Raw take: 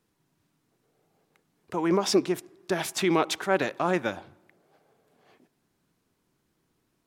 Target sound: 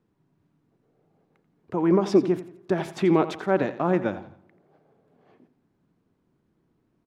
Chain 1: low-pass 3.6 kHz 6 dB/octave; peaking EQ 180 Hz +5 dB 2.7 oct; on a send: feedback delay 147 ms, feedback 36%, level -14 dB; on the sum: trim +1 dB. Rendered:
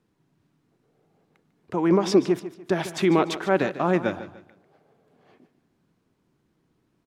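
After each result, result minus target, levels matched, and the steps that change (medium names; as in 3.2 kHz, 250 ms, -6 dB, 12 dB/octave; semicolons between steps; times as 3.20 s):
echo 61 ms late; 4 kHz band +6.5 dB
change: feedback delay 86 ms, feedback 36%, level -14 dB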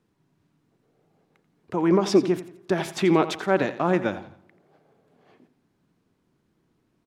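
4 kHz band +6.5 dB
change: low-pass 1.2 kHz 6 dB/octave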